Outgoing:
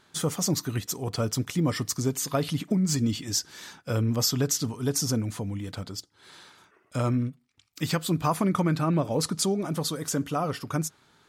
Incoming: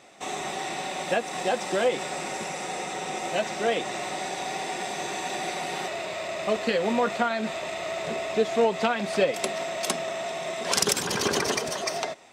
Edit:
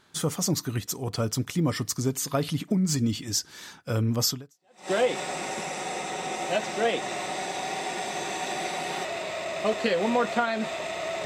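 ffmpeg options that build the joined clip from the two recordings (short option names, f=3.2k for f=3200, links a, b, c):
-filter_complex "[0:a]apad=whole_dur=11.25,atrim=end=11.25,atrim=end=4.91,asetpts=PTS-STARTPTS[a];[1:a]atrim=start=1.14:end=8.08,asetpts=PTS-STARTPTS[b];[a][b]acrossfade=d=0.6:c1=exp:c2=exp"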